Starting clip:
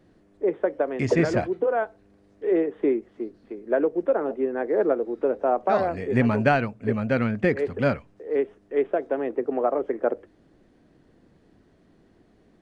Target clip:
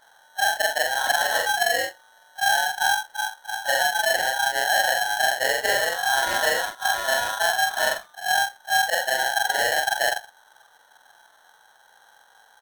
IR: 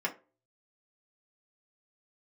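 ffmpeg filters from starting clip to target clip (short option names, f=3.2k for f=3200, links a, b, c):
-filter_complex "[0:a]afftfilt=real='re':imag='-im':win_size=4096:overlap=0.75,firequalizer=gain_entry='entry(200,0);entry(380,13);entry(620,9);entry(1600,-10);entry(3100,-17)':delay=0.05:min_phase=1,acrossover=split=170|480[a][b][c];[a]acompressor=threshold=-39dB:ratio=4[d];[b]acompressor=threshold=-26dB:ratio=4[e];[c]acompressor=threshold=-24dB:ratio=4[f];[d][e][f]amix=inputs=3:normalize=0,aresample=32000,aresample=44100,aeval=exprs='val(0)*sgn(sin(2*PI*1200*n/s))':c=same"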